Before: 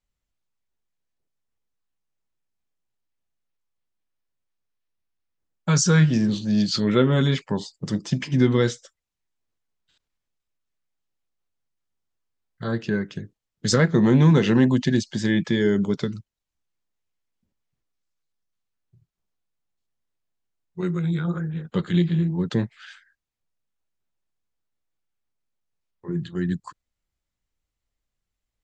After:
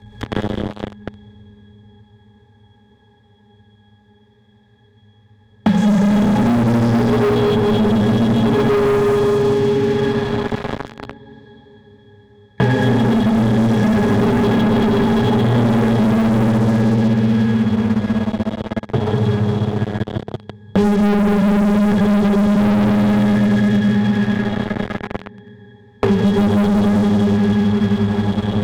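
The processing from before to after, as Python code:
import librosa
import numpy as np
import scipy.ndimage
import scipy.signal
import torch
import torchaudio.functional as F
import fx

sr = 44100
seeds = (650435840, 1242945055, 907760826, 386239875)

y = fx.pitch_heads(x, sr, semitones=2.0)
y = fx.low_shelf(y, sr, hz=98.0, db=5.0)
y = fx.power_curve(y, sr, exponent=0.35)
y = scipy.signal.sosfilt(scipy.signal.butter(2, 47.0, 'highpass', fs=sr, output='sos'), y)
y = fx.octave_resonator(y, sr, note='G#', decay_s=0.16)
y = fx.room_flutter(y, sr, wall_m=10.0, rt60_s=0.44)
y = fx.rev_freeverb(y, sr, rt60_s=4.6, hf_ratio=0.9, predelay_ms=45, drr_db=-9.5)
y = fx.leveller(y, sr, passes=5)
y = fx.band_squash(y, sr, depth_pct=100)
y = y * 10.0 ** (-11.0 / 20.0)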